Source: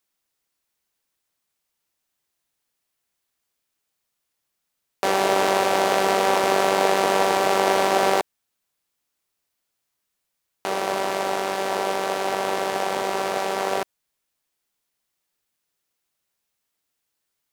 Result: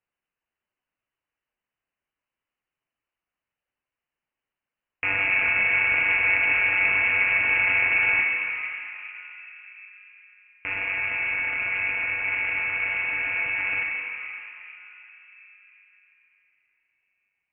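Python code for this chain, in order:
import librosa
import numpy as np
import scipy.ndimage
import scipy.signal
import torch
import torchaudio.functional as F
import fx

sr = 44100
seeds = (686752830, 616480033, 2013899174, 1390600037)

y = fx.dereverb_blind(x, sr, rt60_s=1.2)
y = fx.rev_plate(y, sr, seeds[0], rt60_s=4.3, hf_ratio=0.4, predelay_ms=0, drr_db=-1.0)
y = fx.freq_invert(y, sr, carrier_hz=3000)
y = y * 10.0 ** (-4.0 / 20.0)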